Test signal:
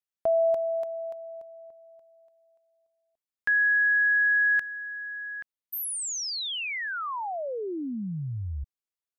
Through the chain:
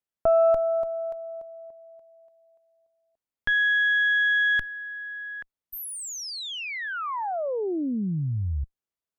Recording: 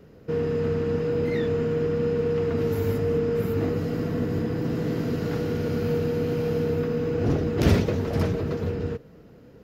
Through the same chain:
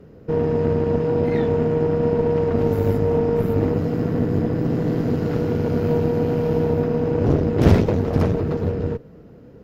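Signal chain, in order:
harmonic generator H 6 −17 dB, 8 −42 dB, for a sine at −6 dBFS
tilt shelving filter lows +4.5 dB, about 1,400 Hz
level +1 dB

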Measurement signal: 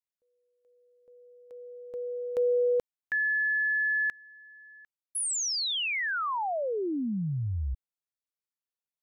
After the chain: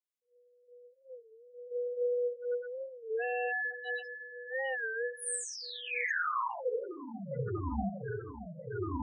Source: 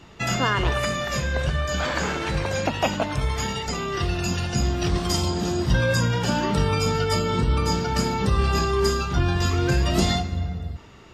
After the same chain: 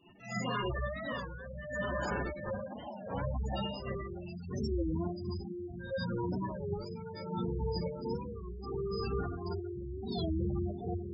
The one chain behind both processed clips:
low-shelf EQ 140 Hz −8.5 dB
feedback echo with a low-pass in the loop 640 ms, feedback 68%, low-pass 2,900 Hz, level −6 dB
dynamic equaliser 2,000 Hz, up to −5 dB, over −42 dBFS, Q 1.3
reversed playback
downward compressor 4 to 1, threshold −40 dBFS
reversed playback
gate pattern "...xxxxxx..x..." 161 BPM −12 dB
in parallel at −3 dB: wrap-around overflow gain 36 dB
on the sum: four-comb reverb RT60 0.63 s, combs from 31 ms, DRR −10 dB
gate on every frequency bin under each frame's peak −10 dB strong
wow of a warped record 33 1/3 rpm, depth 160 cents
level −4.5 dB

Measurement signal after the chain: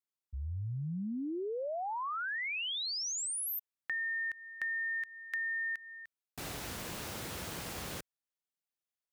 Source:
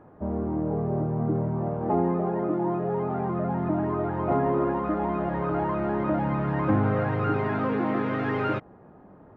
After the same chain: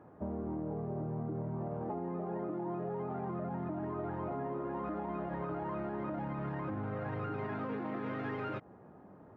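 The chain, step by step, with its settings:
high-pass filter 66 Hz
brickwall limiter −21 dBFS
downward compressor, threshold −30 dBFS
level −4.5 dB

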